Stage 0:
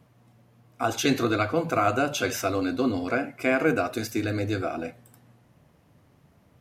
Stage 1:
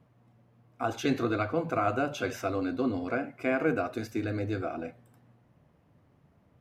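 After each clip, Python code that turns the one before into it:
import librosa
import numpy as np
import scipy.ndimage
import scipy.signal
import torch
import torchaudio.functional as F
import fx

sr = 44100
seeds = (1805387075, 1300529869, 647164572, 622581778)

y = fx.high_shelf(x, sr, hz=3600.0, db=-12.0)
y = F.gain(torch.from_numpy(y), -4.0).numpy()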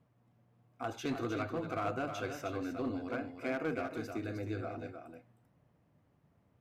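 y = fx.clip_asym(x, sr, top_db=-24.5, bottom_db=-19.0)
y = y + 10.0 ** (-7.5 / 20.0) * np.pad(y, (int(310 * sr / 1000.0), 0))[:len(y)]
y = F.gain(torch.from_numpy(y), -7.5).numpy()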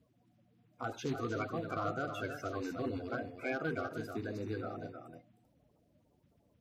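y = fx.spec_quant(x, sr, step_db=30)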